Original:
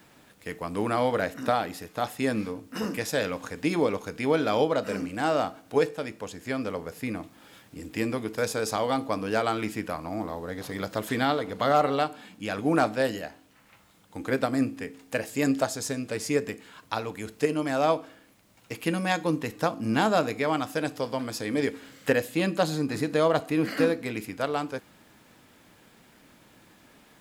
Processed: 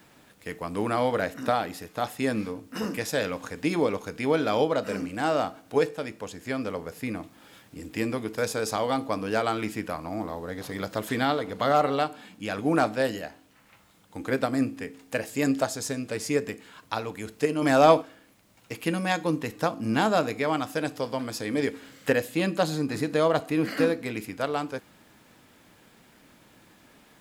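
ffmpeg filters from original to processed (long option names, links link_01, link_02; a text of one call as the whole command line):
ffmpeg -i in.wav -filter_complex "[0:a]asplit=3[link_01][link_02][link_03];[link_01]afade=type=out:start_time=17.61:duration=0.02[link_04];[link_02]acontrast=81,afade=type=in:start_time=17.61:duration=0.02,afade=type=out:start_time=18.01:duration=0.02[link_05];[link_03]afade=type=in:start_time=18.01:duration=0.02[link_06];[link_04][link_05][link_06]amix=inputs=3:normalize=0" out.wav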